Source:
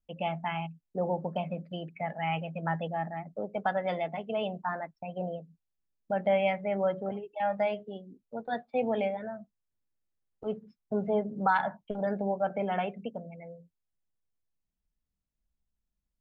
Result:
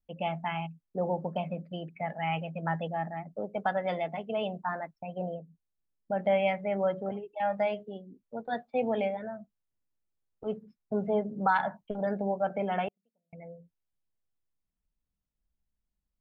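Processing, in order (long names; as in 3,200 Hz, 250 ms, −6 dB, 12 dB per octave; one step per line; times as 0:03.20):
0:05.34–0:06.19: high-shelf EQ 2,400 Hz −10 dB
0:12.88–0:13.33: gate with flip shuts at −37 dBFS, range −41 dB
one half of a high-frequency compander decoder only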